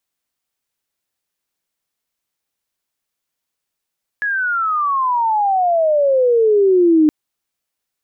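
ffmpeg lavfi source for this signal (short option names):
-f lavfi -i "aevalsrc='pow(10,(-16.5+8.5*t/2.87)/20)*sin(2*PI*1700*2.87/log(300/1700)*(exp(log(300/1700)*t/2.87)-1))':d=2.87:s=44100"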